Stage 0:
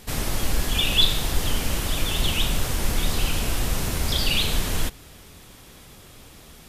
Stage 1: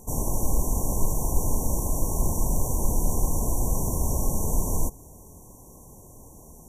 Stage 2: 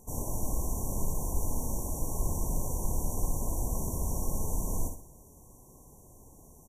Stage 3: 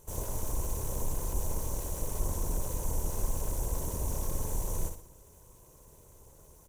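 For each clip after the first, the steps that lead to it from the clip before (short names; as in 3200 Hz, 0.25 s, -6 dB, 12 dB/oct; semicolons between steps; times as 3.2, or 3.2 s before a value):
FFT band-reject 1100–5600 Hz
feedback echo 61 ms, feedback 38%, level -6 dB; gain -8 dB
minimum comb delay 2 ms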